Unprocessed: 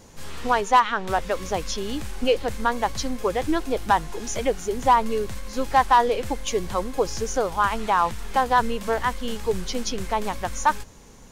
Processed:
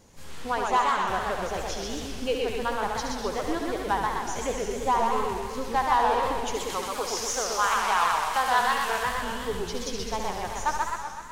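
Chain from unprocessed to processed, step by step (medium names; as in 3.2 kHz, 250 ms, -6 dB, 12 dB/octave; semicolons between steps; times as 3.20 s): 6.56–9.03 s: tilt shelf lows -8.5 dB, about 710 Hz; thinning echo 71 ms, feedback 75%, high-pass 540 Hz, level -6 dB; modulated delay 126 ms, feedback 60%, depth 198 cents, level -3 dB; trim -7.5 dB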